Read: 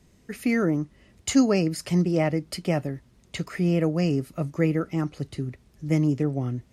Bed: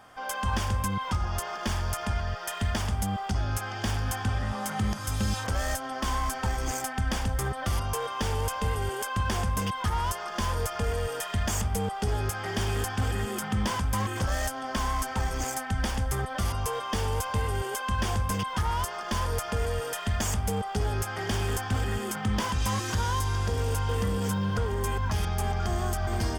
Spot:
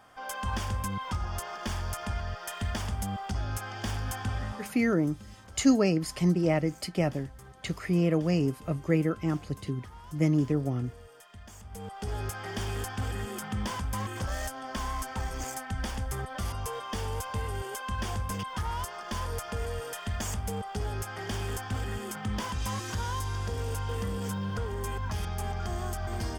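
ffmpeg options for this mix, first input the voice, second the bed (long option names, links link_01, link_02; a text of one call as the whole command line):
ffmpeg -i stem1.wav -i stem2.wav -filter_complex "[0:a]adelay=4300,volume=-2.5dB[link_01];[1:a]volume=11.5dB,afade=type=out:start_time=4.43:duration=0.36:silence=0.149624,afade=type=in:start_time=11.62:duration=0.58:silence=0.16788[link_02];[link_01][link_02]amix=inputs=2:normalize=0" out.wav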